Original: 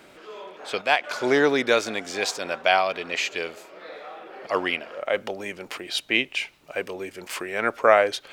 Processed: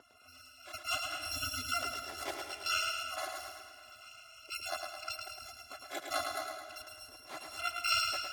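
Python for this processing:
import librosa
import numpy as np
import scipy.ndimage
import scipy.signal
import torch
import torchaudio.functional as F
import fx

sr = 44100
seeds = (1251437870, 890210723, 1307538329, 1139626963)

p1 = fx.bit_reversed(x, sr, seeds[0], block=256)
p2 = fx.spec_gate(p1, sr, threshold_db=-20, keep='strong')
p3 = fx.bandpass_q(p2, sr, hz=370.0, q=0.78)
p4 = fx.low_shelf(p3, sr, hz=280.0, db=-6.5)
p5 = p4 + fx.echo_feedback(p4, sr, ms=108, feedback_pct=53, wet_db=-5.0, dry=0)
p6 = fx.rev_freeverb(p5, sr, rt60_s=2.1, hf_ratio=0.75, predelay_ms=105, drr_db=10.5)
y = p6 * 10.0 ** (5.5 / 20.0)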